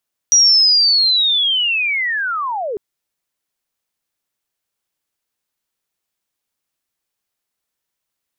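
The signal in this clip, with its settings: chirp linear 5800 Hz -> 380 Hz -7 dBFS -> -20 dBFS 2.45 s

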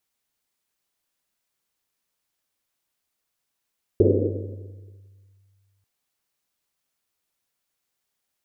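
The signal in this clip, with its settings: Risset drum length 1.84 s, pitch 98 Hz, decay 2.36 s, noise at 390 Hz, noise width 260 Hz, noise 60%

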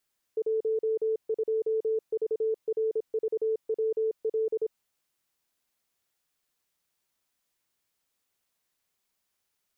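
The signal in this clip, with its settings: Morse "12VRVWL" 26 wpm 441 Hz -24 dBFS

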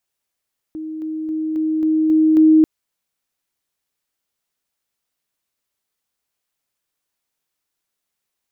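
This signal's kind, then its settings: level ladder 314 Hz -25.5 dBFS, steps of 3 dB, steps 7, 0.27 s 0.00 s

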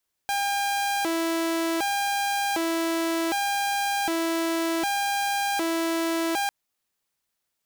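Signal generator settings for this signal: siren hi-lo 330–803 Hz 0.66/s saw -21 dBFS 6.20 s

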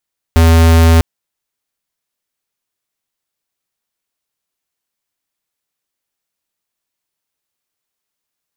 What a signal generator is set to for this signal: tone square 82.2 Hz -7 dBFS 0.65 s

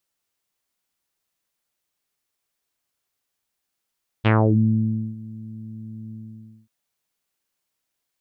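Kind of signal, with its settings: synth note saw A2 24 dB/oct, low-pass 230 Hz, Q 2.4, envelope 4 oct, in 0.32 s, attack 23 ms, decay 0.89 s, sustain -22.5 dB, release 0.56 s, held 1.88 s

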